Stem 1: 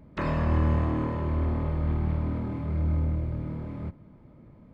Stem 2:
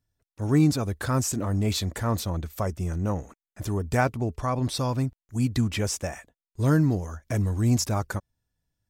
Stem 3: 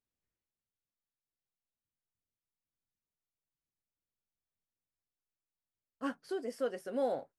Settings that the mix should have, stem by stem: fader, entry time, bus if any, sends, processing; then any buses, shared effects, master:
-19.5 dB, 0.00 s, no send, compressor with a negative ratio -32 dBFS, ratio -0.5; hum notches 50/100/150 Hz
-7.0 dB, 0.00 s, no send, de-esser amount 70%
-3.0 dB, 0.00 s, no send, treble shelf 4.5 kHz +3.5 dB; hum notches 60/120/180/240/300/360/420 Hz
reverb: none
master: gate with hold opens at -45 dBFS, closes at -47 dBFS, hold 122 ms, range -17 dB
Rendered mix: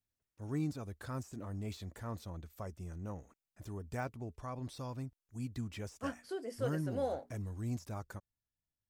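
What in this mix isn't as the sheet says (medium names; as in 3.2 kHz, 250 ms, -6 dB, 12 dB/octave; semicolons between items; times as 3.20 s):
stem 1: muted; stem 2 -7.0 dB -> -16.0 dB; master: missing gate with hold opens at -45 dBFS, closes at -47 dBFS, hold 122 ms, range -17 dB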